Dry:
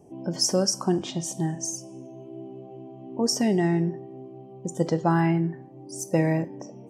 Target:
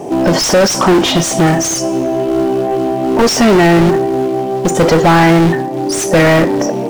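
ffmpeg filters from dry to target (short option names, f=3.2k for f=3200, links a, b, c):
-filter_complex "[0:a]acrusher=bits=6:mode=log:mix=0:aa=0.000001,asplit=2[a][b];[b]highpass=f=720:p=1,volume=33dB,asoftclip=type=tanh:threshold=-10dB[c];[a][c]amix=inputs=2:normalize=0,lowpass=f=2.4k:p=1,volume=-6dB,volume=8.5dB"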